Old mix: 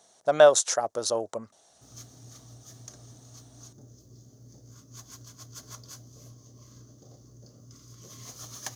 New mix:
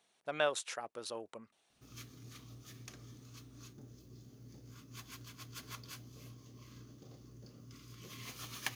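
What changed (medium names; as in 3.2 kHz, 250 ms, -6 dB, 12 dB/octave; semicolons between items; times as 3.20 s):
speech -11.0 dB; master: add fifteen-band graphic EQ 100 Hz -6 dB, 630 Hz -8 dB, 2.5 kHz +12 dB, 6.3 kHz -11 dB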